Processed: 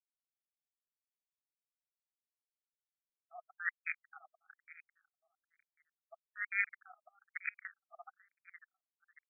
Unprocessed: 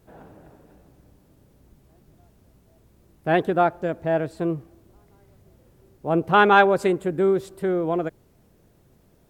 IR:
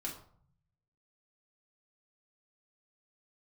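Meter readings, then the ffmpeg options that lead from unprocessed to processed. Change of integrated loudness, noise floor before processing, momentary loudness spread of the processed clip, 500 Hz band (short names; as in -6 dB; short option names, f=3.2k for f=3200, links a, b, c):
-18.0 dB, -59 dBFS, 23 LU, under -40 dB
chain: -filter_complex "[0:a]highshelf=f=3.1k:g=2.5,acrossover=split=460|2800[a][b][c];[c]alimiter=level_in=7.5dB:limit=-24dB:level=0:latency=1:release=294,volume=-7.5dB[d];[a][b][d]amix=inputs=3:normalize=0,dynaudnorm=f=140:g=7:m=5dB,aexciter=amount=14.4:drive=2.2:freq=2.2k,equalizer=f=65:w=3.5:g=11,aeval=exprs='abs(val(0))':c=same,areverse,acompressor=threshold=-30dB:ratio=6,areverse,agate=range=-33dB:threshold=-31dB:ratio=3:detection=peak,acrusher=bits=3:mix=0:aa=0.000001,asuperstop=centerf=970:order=4:qfactor=0.67,aecho=1:1:547|1094|1641:0.1|0.035|0.0123,afftfilt=real='re*between(b*sr/1024,890*pow(1800/890,0.5+0.5*sin(2*PI*1.1*pts/sr))/1.41,890*pow(1800/890,0.5+0.5*sin(2*PI*1.1*pts/sr))*1.41)':imag='im*between(b*sr/1024,890*pow(1800/890,0.5+0.5*sin(2*PI*1.1*pts/sr))/1.41,890*pow(1800/890,0.5+0.5*sin(2*PI*1.1*pts/sr))*1.41)':win_size=1024:overlap=0.75,volume=9dB"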